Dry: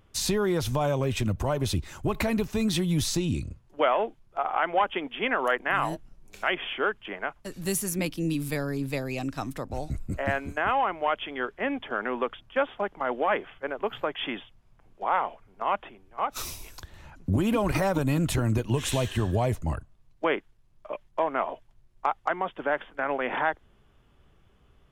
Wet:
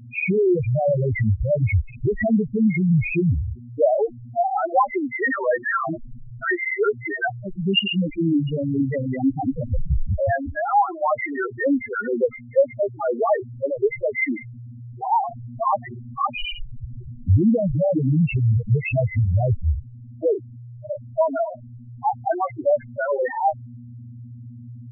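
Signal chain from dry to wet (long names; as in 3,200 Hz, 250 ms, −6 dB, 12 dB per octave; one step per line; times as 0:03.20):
hearing-aid frequency compression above 1,800 Hz 4 to 1
hum with harmonics 120 Hz, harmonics 6, −45 dBFS −2 dB per octave
spectral peaks only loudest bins 2
in parallel at +2 dB: speech leveller 0.5 s
on the sum: level +4.5 dB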